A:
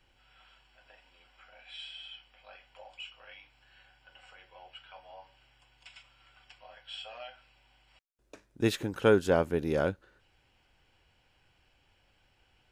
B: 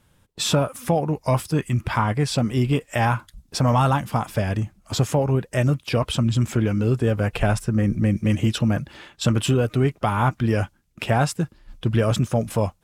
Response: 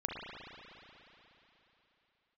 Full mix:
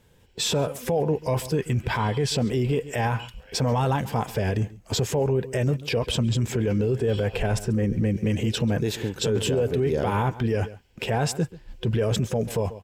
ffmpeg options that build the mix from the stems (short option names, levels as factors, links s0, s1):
-filter_complex "[0:a]bass=f=250:g=9,treble=f=4000:g=7,adelay=200,volume=0.944,asplit=3[s0][s1][s2];[s0]atrim=end=4.51,asetpts=PTS-STARTPTS,afade=t=out:st=4.506:d=0.004:c=hsin[s3];[s1]atrim=start=4.51:end=6.58,asetpts=PTS-STARTPTS,volume=0[s4];[s2]atrim=start=6.58,asetpts=PTS-STARTPTS,afade=t=in:d=0.004:c=hsin[s5];[s3][s4][s5]concat=n=3:v=0:a=1,asplit=2[s6][s7];[s7]volume=0.106[s8];[1:a]volume=1.12,asplit=2[s9][s10];[s10]volume=0.0794[s11];[s8][s11]amix=inputs=2:normalize=0,aecho=0:1:137:1[s12];[s6][s9][s12]amix=inputs=3:normalize=0,superequalizer=7b=2.51:10b=0.501:16b=0.562,alimiter=limit=0.158:level=0:latency=1:release=24"